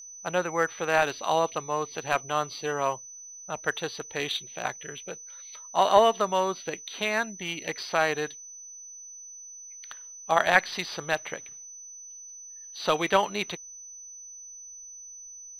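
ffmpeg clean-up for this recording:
-af "bandreject=f=6k:w=30"

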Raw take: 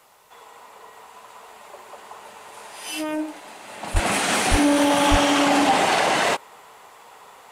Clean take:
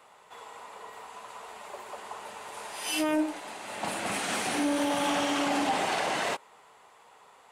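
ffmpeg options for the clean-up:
-filter_complex "[0:a]asplit=3[a][b][c];[a]afade=t=out:st=3.93:d=0.02[d];[b]highpass=f=140:w=0.5412,highpass=f=140:w=1.3066,afade=t=in:st=3.93:d=0.02,afade=t=out:st=4.05:d=0.02[e];[c]afade=t=in:st=4.05:d=0.02[f];[d][e][f]amix=inputs=3:normalize=0,asplit=3[g][h][i];[g]afade=t=out:st=4.5:d=0.02[j];[h]highpass=f=140:w=0.5412,highpass=f=140:w=1.3066,afade=t=in:st=4.5:d=0.02,afade=t=out:st=4.62:d=0.02[k];[i]afade=t=in:st=4.62:d=0.02[l];[j][k][l]amix=inputs=3:normalize=0,asplit=3[m][n][o];[m]afade=t=out:st=5.1:d=0.02[p];[n]highpass=f=140:w=0.5412,highpass=f=140:w=1.3066,afade=t=in:st=5.1:d=0.02,afade=t=out:st=5.22:d=0.02[q];[o]afade=t=in:st=5.22:d=0.02[r];[p][q][r]amix=inputs=3:normalize=0,agate=range=-21dB:threshold=-39dB,asetnsamples=n=441:p=0,asendcmd='3.96 volume volume -9.5dB',volume=0dB"

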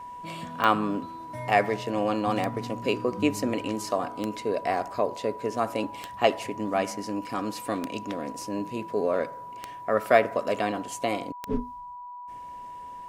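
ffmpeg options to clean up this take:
-af "adeclick=t=4,bandreject=f=980:w=30"

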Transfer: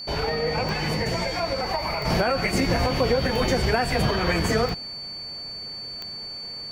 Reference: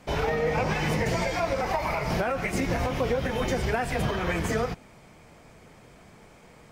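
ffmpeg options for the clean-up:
-af "adeclick=t=4,bandreject=f=4.5k:w=30,asetnsamples=n=441:p=0,asendcmd='2.05 volume volume -4.5dB',volume=0dB"

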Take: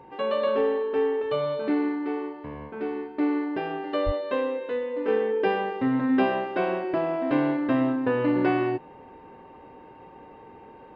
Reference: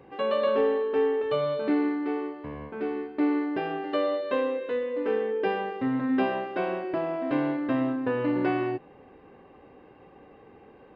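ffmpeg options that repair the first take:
-filter_complex "[0:a]bandreject=f=910:w=30,asplit=3[a][b][c];[a]afade=t=out:st=4.05:d=0.02[d];[b]highpass=f=140:w=0.5412,highpass=f=140:w=1.3066,afade=t=in:st=4.05:d=0.02,afade=t=out:st=4.17:d=0.02[e];[c]afade=t=in:st=4.17:d=0.02[f];[d][e][f]amix=inputs=3:normalize=0,asetnsamples=n=441:p=0,asendcmd='5.08 volume volume -3dB',volume=0dB"

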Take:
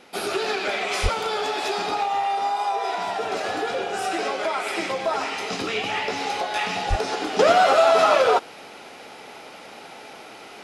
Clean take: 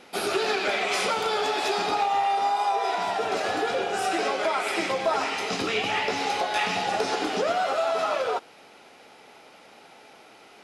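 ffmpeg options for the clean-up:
-filter_complex "[0:a]asplit=3[a][b][c];[a]afade=t=out:st=1.02:d=0.02[d];[b]highpass=f=140:w=0.5412,highpass=f=140:w=1.3066,afade=t=in:st=1.02:d=0.02,afade=t=out:st=1.14:d=0.02[e];[c]afade=t=in:st=1.14:d=0.02[f];[d][e][f]amix=inputs=3:normalize=0,asplit=3[g][h][i];[g]afade=t=out:st=6.89:d=0.02[j];[h]highpass=f=140:w=0.5412,highpass=f=140:w=1.3066,afade=t=in:st=6.89:d=0.02,afade=t=out:st=7.01:d=0.02[k];[i]afade=t=in:st=7.01:d=0.02[l];[j][k][l]amix=inputs=3:normalize=0,asetnsamples=n=441:p=0,asendcmd='7.39 volume volume -9dB',volume=0dB"

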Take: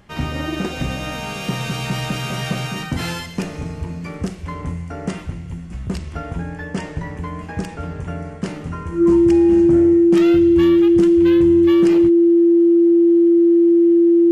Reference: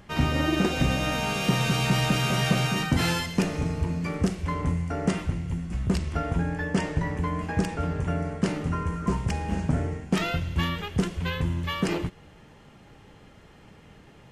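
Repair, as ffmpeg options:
-af "bandreject=f=340:w=30"

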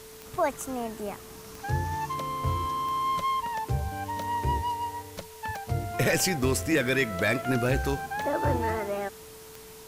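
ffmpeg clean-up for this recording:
-af "adeclick=t=4,bandreject=f=440:w=30,afwtdn=0.0035"

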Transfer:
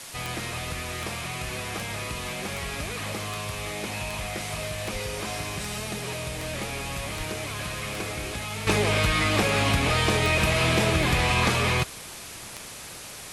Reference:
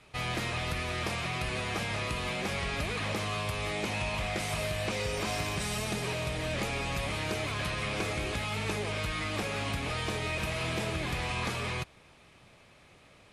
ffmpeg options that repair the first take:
-filter_complex "[0:a]adeclick=t=4,asplit=3[a][b][c];[a]afade=t=out:st=4.92:d=0.02[d];[b]highpass=f=140:w=0.5412,highpass=f=140:w=1.3066,afade=t=in:st=4.92:d=0.02,afade=t=out:st=5.04:d=0.02[e];[c]afade=t=in:st=5.04:d=0.02[f];[d][e][f]amix=inputs=3:normalize=0,asplit=3[g][h][i];[g]afade=t=out:st=7.17:d=0.02[j];[h]highpass=f=140:w=0.5412,highpass=f=140:w=1.3066,afade=t=in:st=7.17:d=0.02,afade=t=out:st=7.29:d=0.02[k];[i]afade=t=in:st=7.29:d=0.02[l];[j][k][l]amix=inputs=3:normalize=0,afwtdn=0.011,asetnsamples=n=441:p=0,asendcmd='8.67 volume volume -10.5dB',volume=0dB"

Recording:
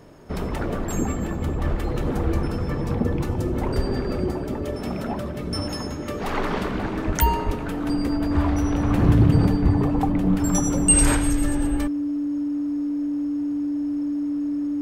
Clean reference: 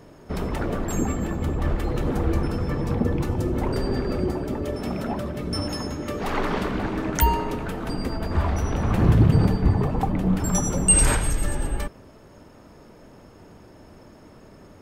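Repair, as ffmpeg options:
-filter_complex "[0:a]bandreject=f=290:w=30,asplit=3[a][b][c];[a]afade=t=out:st=3.75:d=0.02[d];[b]highpass=f=140:w=0.5412,highpass=f=140:w=1.3066,afade=t=in:st=3.75:d=0.02,afade=t=out:st=3.87:d=0.02[e];[c]afade=t=in:st=3.87:d=0.02[f];[d][e][f]amix=inputs=3:normalize=0,asplit=3[g][h][i];[g]afade=t=out:st=7.06:d=0.02[j];[h]highpass=f=140:w=0.5412,highpass=f=140:w=1.3066,afade=t=in:st=7.06:d=0.02,afade=t=out:st=7.18:d=0.02[k];[i]afade=t=in:st=7.18:d=0.02[l];[j][k][l]amix=inputs=3:normalize=0,asplit=3[m][n][o];[m]afade=t=out:st=7.45:d=0.02[p];[n]highpass=f=140:w=0.5412,highpass=f=140:w=1.3066,afade=t=in:st=7.45:d=0.02,afade=t=out:st=7.57:d=0.02[q];[o]afade=t=in:st=7.57:d=0.02[r];[p][q][r]amix=inputs=3:normalize=0"

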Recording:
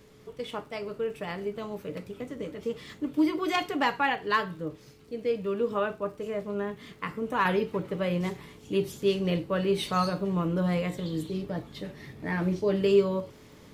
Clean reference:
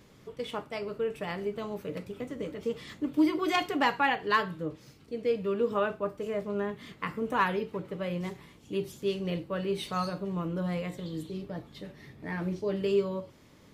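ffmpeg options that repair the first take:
-af "adeclick=t=4,bandreject=f=430:w=30,agate=range=-21dB:threshold=-42dB,asetnsamples=n=441:p=0,asendcmd='7.45 volume volume -5dB',volume=0dB"

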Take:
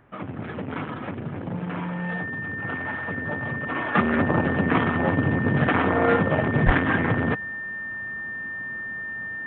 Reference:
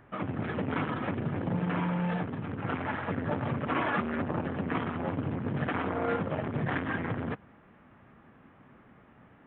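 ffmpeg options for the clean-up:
-filter_complex "[0:a]bandreject=f=1.8k:w=30,asplit=3[a][b][c];[a]afade=t=out:st=6.65:d=0.02[d];[b]highpass=f=140:w=0.5412,highpass=f=140:w=1.3066,afade=t=in:st=6.65:d=0.02,afade=t=out:st=6.77:d=0.02[e];[c]afade=t=in:st=6.77:d=0.02[f];[d][e][f]amix=inputs=3:normalize=0,asetnsamples=n=441:p=0,asendcmd='3.95 volume volume -10dB',volume=0dB"

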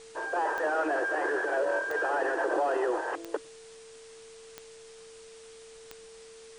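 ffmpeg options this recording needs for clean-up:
-af "adeclick=t=4,bandreject=f=450:w=30,afwtdn=0.0025"

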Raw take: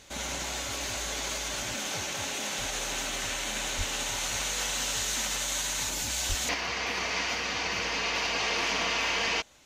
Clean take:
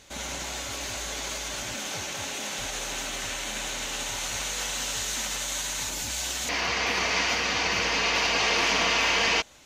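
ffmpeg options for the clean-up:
-filter_complex "[0:a]asplit=3[a][b][c];[a]afade=t=out:st=3.77:d=0.02[d];[b]highpass=f=140:w=0.5412,highpass=f=140:w=1.3066,afade=t=in:st=3.77:d=0.02,afade=t=out:st=3.89:d=0.02[e];[c]afade=t=in:st=3.89:d=0.02[f];[d][e][f]amix=inputs=3:normalize=0,asplit=3[g][h][i];[g]afade=t=out:st=6.28:d=0.02[j];[h]highpass=f=140:w=0.5412,highpass=f=140:w=1.3066,afade=t=in:st=6.28:d=0.02,afade=t=out:st=6.4:d=0.02[k];[i]afade=t=in:st=6.4:d=0.02[l];[j][k][l]amix=inputs=3:normalize=0,asetnsamples=n=441:p=0,asendcmd='6.54 volume volume 5dB',volume=0dB"

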